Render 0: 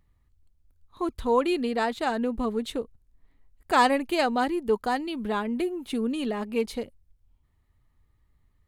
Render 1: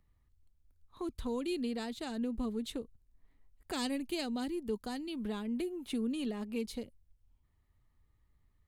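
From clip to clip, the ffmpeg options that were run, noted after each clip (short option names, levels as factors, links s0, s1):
-filter_complex "[0:a]acrossover=split=340|3000[s0][s1][s2];[s1]acompressor=threshold=0.01:ratio=6[s3];[s0][s3][s2]amix=inputs=3:normalize=0,volume=0.562"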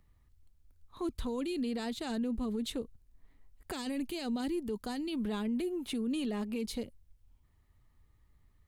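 -af "alimiter=level_in=2.82:limit=0.0631:level=0:latency=1:release=25,volume=0.355,volume=1.78"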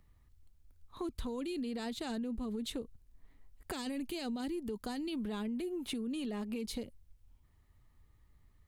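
-af "acompressor=threshold=0.0158:ratio=6,volume=1.12"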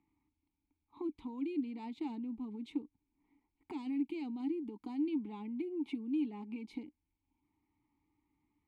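-filter_complex "[0:a]asplit=3[s0][s1][s2];[s0]bandpass=f=300:t=q:w=8,volume=1[s3];[s1]bandpass=f=870:t=q:w=8,volume=0.501[s4];[s2]bandpass=f=2240:t=q:w=8,volume=0.355[s5];[s3][s4][s5]amix=inputs=3:normalize=0,volume=2.51"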